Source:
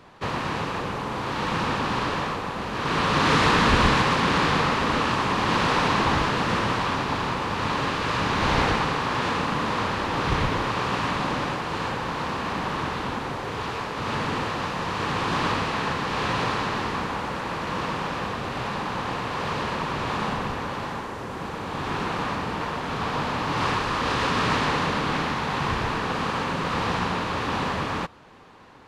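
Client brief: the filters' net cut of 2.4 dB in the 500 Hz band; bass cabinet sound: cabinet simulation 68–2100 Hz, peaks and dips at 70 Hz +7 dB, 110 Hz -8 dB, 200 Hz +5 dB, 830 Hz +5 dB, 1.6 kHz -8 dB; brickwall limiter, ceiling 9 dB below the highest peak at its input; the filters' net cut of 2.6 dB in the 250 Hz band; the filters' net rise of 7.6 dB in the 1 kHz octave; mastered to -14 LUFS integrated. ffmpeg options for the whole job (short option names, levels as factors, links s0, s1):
-af "equalizer=f=250:t=o:g=-5.5,equalizer=f=500:t=o:g=-4.5,equalizer=f=1000:t=o:g=8.5,alimiter=limit=0.224:level=0:latency=1,highpass=f=68:w=0.5412,highpass=f=68:w=1.3066,equalizer=f=70:t=q:w=4:g=7,equalizer=f=110:t=q:w=4:g=-8,equalizer=f=200:t=q:w=4:g=5,equalizer=f=830:t=q:w=4:g=5,equalizer=f=1600:t=q:w=4:g=-8,lowpass=f=2100:w=0.5412,lowpass=f=2100:w=1.3066,volume=2.82"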